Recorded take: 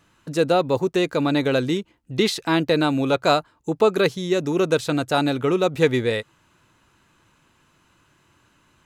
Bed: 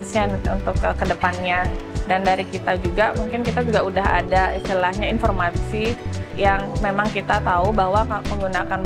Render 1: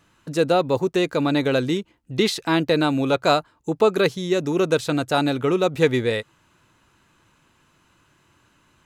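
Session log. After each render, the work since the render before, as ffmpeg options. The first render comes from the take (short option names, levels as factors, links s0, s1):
-af anull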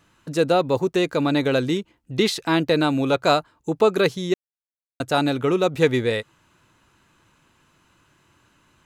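-filter_complex "[0:a]asplit=3[s0][s1][s2];[s0]atrim=end=4.34,asetpts=PTS-STARTPTS,afade=t=out:st=4.336:d=0.004:c=hsin[s3];[s1]atrim=start=4.34:end=5,asetpts=PTS-STARTPTS,volume=0[s4];[s2]atrim=start=5,asetpts=PTS-STARTPTS,afade=t=in:d=0.004:c=hsin[s5];[s3][s4][s5]concat=n=3:v=0:a=1"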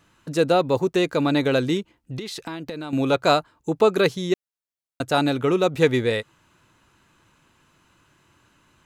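-filter_complex "[0:a]asettb=1/sr,asplit=3[s0][s1][s2];[s0]atrim=end=2.164[s3];[s1]atrim=start=2.16:end=2.93,asetpts=PTS-STARTPTS,afade=t=in:d=0.004:c=qsin,afade=t=out:st=0.766:d=0.004:c=qsin,acompressor=threshold=0.0398:ratio=20:attack=3.2:release=140:knee=1:detection=peak[s4];[s2]atrim=start=2.926[s5];[s3][s4]acrossfade=d=0.004:c1=hsin:c2=qsin[s6];[s6][s5]acrossfade=d=0.004:c1=qsin:c2=hsin"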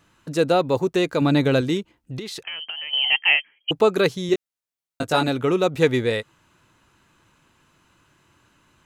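-filter_complex "[0:a]asettb=1/sr,asplit=3[s0][s1][s2];[s0]atrim=end=1.214[s3];[s1]atrim=start=1.21:end=1.61,asetpts=PTS-STARTPTS,afade=t=in:d=0.004:c=qsin,afade=t=out:st=0.396:d=0.004:c=qsin,equalizer=f=160:w=1.2:g=7[s4];[s2]atrim=start=1.606[s5];[s3][s4]acrossfade=d=0.004:c1=hsin:c2=qsin[s6];[s6][s5]acrossfade=d=0.004:c1=qsin:c2=hsin,asettb=1/sr,asplit=3[s7][s8][s9];[s7]atrim=end=2.434[s10];[s8]atrim=start=2.43:end=3.71,asetpts=PTS-STARTPTS,afade=t=in:d=0.004:c=qsin,afade=t=out:st=1.276:d=0.004:c=qsin,lowpass=f=2800:t=q:w=0.5098,lowpass=f=2800:t=q:w=0.6013,lowpass=f=2800:t=q:w=0.9,lowpass=f=2800:t=q:w=2.563,afreqshift=-3300[s11];[s9]atrim=start=3.706[s12];[s10][s11]acrossfade=d=0.004:c1=hsin:c2=qsin[s13];[s13][s12]acrossfade=d=0.004:c1=qsin:c2=hsin,asettb=1/sr,asplit=3[s14][s15][s16];[s14]atrim=end=4.274[s17];[s15]atrim=start=4.27:end=5.28,asetpts=PTS-STARTPTS,afade=t=in:d=0.004:c=qsin,afade=t=out:st=1.006:d=0.004:c=qsin,asplit=2[s18][s19];[s19]adelay=19,volume=0.596[s20];[s18][s20]amix=inputs=2:normalize=0,atrim=end_sample=44541[s21];[s16]atrim=start=5.276[s22];[s17][s21]acrossfade=d=0.004:c1=hsin:c2=qsin[s23];[s23][s22]acrossfade=d=0.004:c1=qsin:c2=hsin"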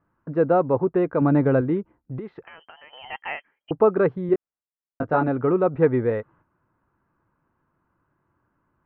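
-af "agate=range=0.355:threshold=0.00251:ratio=16:detection=peak,lowpass=f=1500:w=0.5412,lowpass=f=1500:w=1.3066"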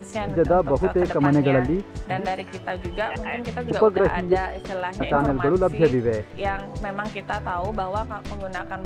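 -filter_complex "[1:a]volume=0.376[s0];[0:a][s0]amix=inputs=2:normalize=0"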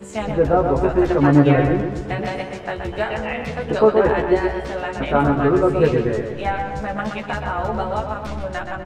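-filter_complex "[0:a]asplit=2[s0][s1];[s1]adelay=14,volume=0.708[s2];[s0][s2]amix=inputs=2:normalize=0,asplit=2[s3][s4];[s4]adelay=125,lowpass=f=3700:p=1,volume=0.531,asplit=2[s5][s6];[s6]adelay=125,lowpass=f=3700:p=1,volume=0.53,asplit=2[s7][s8];[s8]adelay=125,lowpass=f=3700:p=1,volume=0.53,asplit=2[s9][s10];[s10]adelay=125,lowpass=f=3700:p=1,volume=0.53,asplit=2[s11][s12];[s12]adelay=125,lowpass=f=3700:p=1,volume=0.53,asplit=2[s13][s14];[s14]adelay=125,lowpass=f=3700:p=1,volume=0.53,asplit=2[s15][s16];[s16]adelay=125,lowpass=f=3700:p=1,volume=0.53[s17];[s3][s5][s7][s9][s11][s13][s15][s17]amix=inputs=8:normalize=0"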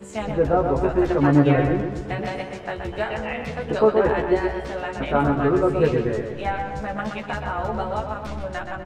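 -af "volume=0.708"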